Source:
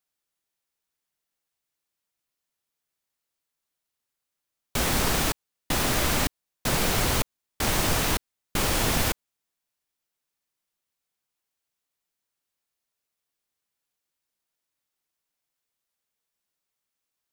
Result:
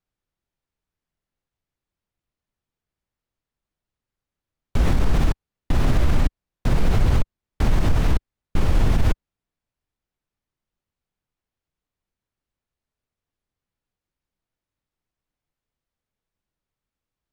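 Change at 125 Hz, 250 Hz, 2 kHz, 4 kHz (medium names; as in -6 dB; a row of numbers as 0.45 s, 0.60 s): +9.0 dB, +3.5 dB, -5.5 dB, -9.5 dB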